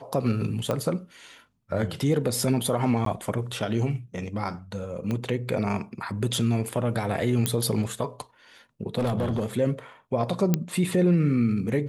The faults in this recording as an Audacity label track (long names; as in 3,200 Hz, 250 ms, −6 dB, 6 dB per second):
0.710000	0.710000	click −14 dBFS
3.050000	3.060000	drop-out 13 ms
5.110000	5.110000	click −17 dBFS
7.460000	7.460000	click −8 dBFS
8.980000	9.460000	clipping −21.5 dBFS
10.540000	10.540000	click −8 dBFS